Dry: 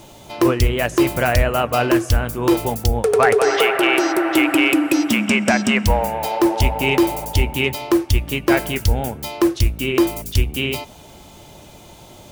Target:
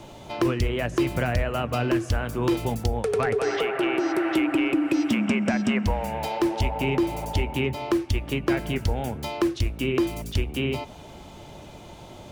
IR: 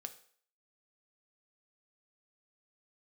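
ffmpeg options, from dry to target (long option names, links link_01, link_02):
-filter_complex "[0:a]aemphasis=mode=reproduction:type=50kf,acrossover=split=290|1800[link_01][link_02][link_03];[link_01]acompressor=threshold=-23dB:ratio=4[link_04];[link_02]acompressor=threshold=-29dB:ratio=4[link_05];[link_03]acompressor=threshold=-34dB:ratio=4[link_06];[link_04][link_05][link_06]amix=inputs=3:normalize=0"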